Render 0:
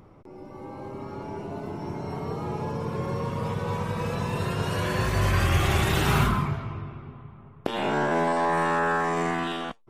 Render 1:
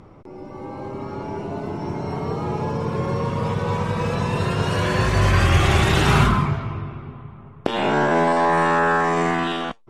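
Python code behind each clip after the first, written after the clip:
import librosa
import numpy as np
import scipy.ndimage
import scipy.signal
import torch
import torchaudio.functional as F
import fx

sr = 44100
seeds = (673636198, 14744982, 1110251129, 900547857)

y = scipy.signal.sosfilt(scipy.signal.butter(2, 8300.0, 'lowpass', fs=sr, output='sos'), x)
y = y * 10.0 ** (6.0 / 20.0)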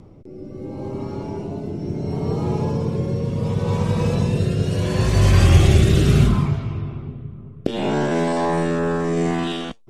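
y = fx.peak_eq(x, sr, hz=1400.0, db=-11.5, octaves=2.2)
y = fx.rotary(y, sr, hz=0.7)
y = y * 10.0 ** (5.5 / 20.0)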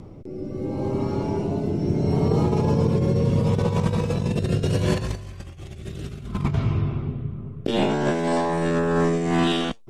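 y = fx.over_compress(x, sr, threshold_db=-22.0, ratio=-0.5)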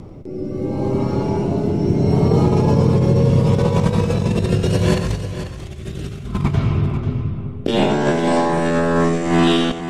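y = fx.echo_multitap(x, sr, ms=(92, 491), db=(-12.0, -11.0))
y = y * 10.0 ** (5.0 / 20.0)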